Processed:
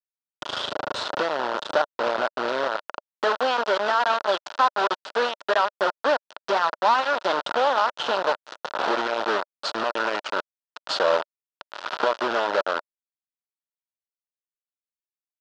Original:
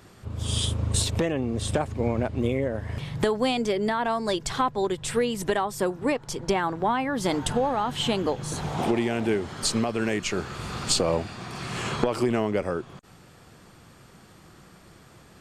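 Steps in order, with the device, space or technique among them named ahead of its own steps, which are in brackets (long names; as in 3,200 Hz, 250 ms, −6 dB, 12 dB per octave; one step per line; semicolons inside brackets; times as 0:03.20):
hand-held game console (bit reduction 4 bits; loudspeaker in its box 480–4,500 Hz, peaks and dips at 600 Hz +8 dB, 950 Hz +6 dB, 1,400 Hz +9 dB, 2,200 Hz −8 dB)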